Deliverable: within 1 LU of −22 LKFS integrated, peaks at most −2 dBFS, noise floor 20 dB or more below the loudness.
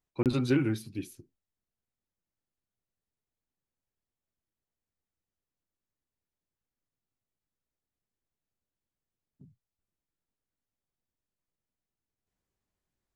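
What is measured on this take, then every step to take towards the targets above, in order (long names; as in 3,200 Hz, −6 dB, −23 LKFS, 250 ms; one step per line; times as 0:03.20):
number of dropouts 1; longest dropout 28 ms; integrated loudness −30.0 LKFS; sample peak −14.5 dBFS; target loudness −22.0 LKFS
→ repair the gap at 0:00.23, 28 ms
level +8 dB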